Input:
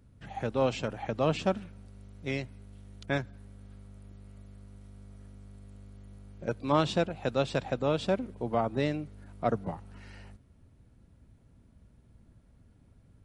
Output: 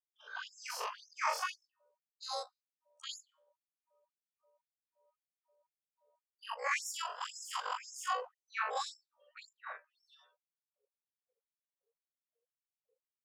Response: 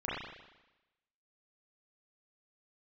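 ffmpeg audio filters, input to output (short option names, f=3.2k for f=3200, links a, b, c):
-af "afftfilt=real='re':imag='-im':win_size=4096:overlap=0.75,adynamicequalizer=threshold=0.00178:dfrequency=160:dqfactor=4.3:tfrequency=160:tqfactor=4.3:attack=5:release=100:ratio=0.375:range=2:mode=cutabove:tftype=bell,asetrate=85689,aresample=44100,atempo=0.514651,afftdn=nr=31:nf=-58,afftfilt=real='re*gte(b*sr/1024,390*pow(5300/390,0.5+0.5*sin(2*PI*1.9*pts/sr)))':imag='im*gte(b*sr/1024,390*pow(5300/390,0.5+0.5*sin(2*PI*1.9*pts/sr)))':win_size=1024:overlap=0.75,volume=1dB"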